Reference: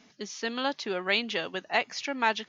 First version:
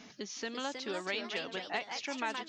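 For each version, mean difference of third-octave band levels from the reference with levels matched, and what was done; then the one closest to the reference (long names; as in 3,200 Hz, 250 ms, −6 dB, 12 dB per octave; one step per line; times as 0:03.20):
6.5 dB: downward compressor 2 to 1, threshold −52 dBFS, peak gain reduction 17 dB
delay with pitch and tempo change per echo 365 ms, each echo +2 semitones, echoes 2, each echo −6 dB
level +5.5 dB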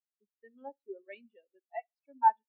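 21.0 dB: high-pass filter 150 Hz 24 dB per octave
repeating echo 67 ms, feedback 55%, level −12 dB
every bin expanded away from the loudest bin 4 to 1
level −2.5 dB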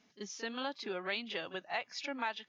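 2.5 dB: noise reduction from a noise print of the clip's start 8 dB
downward compressor 2 to 1, threshold −37 dBFS, peak gain reduction 9.5 dB
echo ahead of the sound 34 ms −14 dB
level −2.5 dB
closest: third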